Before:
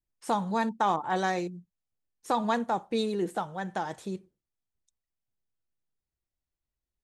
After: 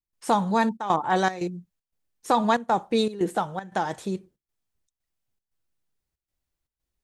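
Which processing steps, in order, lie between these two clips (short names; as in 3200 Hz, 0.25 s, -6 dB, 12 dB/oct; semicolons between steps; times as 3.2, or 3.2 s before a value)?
step gate ".xxxxx.xxx.xxx" 117 bpm -12 dB; gain +6 dB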